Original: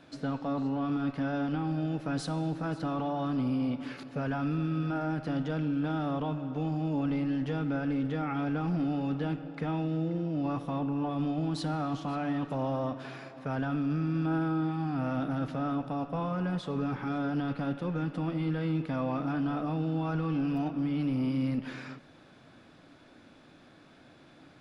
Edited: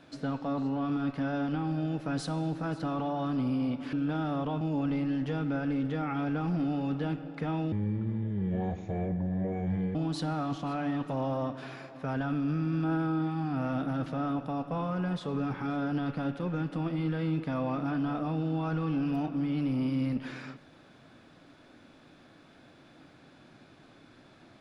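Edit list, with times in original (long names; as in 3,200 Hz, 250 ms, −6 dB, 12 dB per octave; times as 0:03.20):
0:03.93–0:05.68: remove
0:06.36–0:06.81: remove
0:09.92–0:11.37: play speed 65%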